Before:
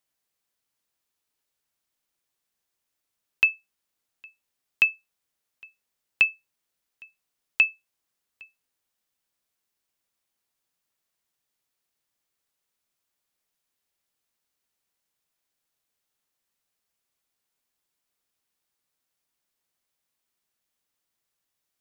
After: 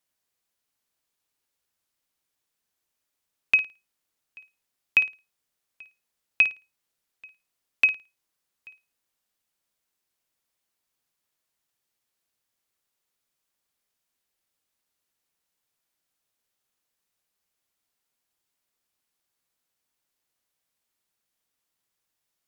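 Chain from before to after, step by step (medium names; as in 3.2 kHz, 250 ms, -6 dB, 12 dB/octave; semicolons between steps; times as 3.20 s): tape speed -3%; flutter echo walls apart 9.4 m, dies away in 0.27 s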